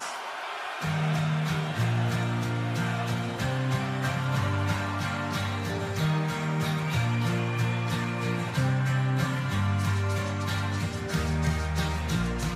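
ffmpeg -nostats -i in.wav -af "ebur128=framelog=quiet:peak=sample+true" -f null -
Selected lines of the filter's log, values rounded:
Integrated loudness:
  I:         -28.4 LUFS
  Threshold: -38.4 LUFS
Loudness range:
  LRA:         1.2 LU
  Threshold: -48.2 LUFS
  LRA low:   -28.8 LUFS
  LRA high:  -27.5 LUFS
Sample peak:
  Peak:      -14.7 dBFS
True peak:
  Peak:      -14.6 dBFS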